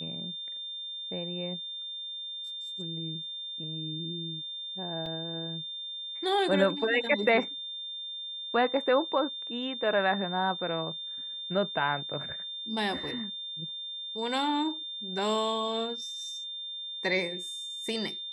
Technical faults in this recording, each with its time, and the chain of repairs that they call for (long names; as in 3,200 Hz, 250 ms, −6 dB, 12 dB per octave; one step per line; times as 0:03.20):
whistle 3,600 Hz −36 dBFS
0:05.06: drop-out 2.4 ms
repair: notch filter 3,600 Hz, Q 30
repair the gap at 0:05.06, 2.4 ms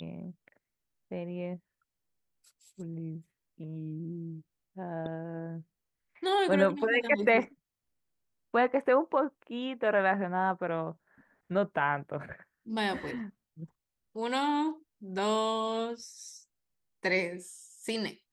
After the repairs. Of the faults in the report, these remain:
none of them is left